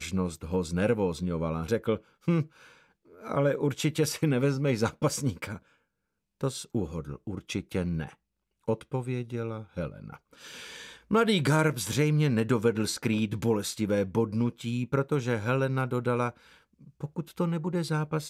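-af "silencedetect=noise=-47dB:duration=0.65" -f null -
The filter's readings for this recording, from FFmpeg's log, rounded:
silence_start: 5.58
silence_end: 6.41 | silence_duration: 0.82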